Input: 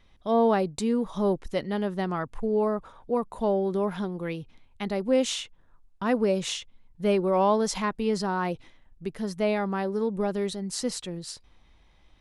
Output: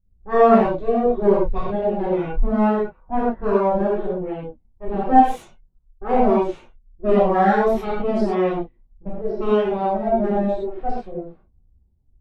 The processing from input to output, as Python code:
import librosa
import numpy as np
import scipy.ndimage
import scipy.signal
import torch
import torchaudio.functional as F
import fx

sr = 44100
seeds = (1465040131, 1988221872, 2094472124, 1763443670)

y = fx.low_shelf(x, sr, hz=380.0, db=10.0)
y = np.abs(y)
y = fx.env_lowpass(y, sr, base_hz=620.0, full_db=-15.5)
y = fx.rev_gated(y, sr, seeds[0], gate_ms=150, shape='flat', drr_db=-7.0)
y = fx.spectral_expand(y, sr, expansion=1.5)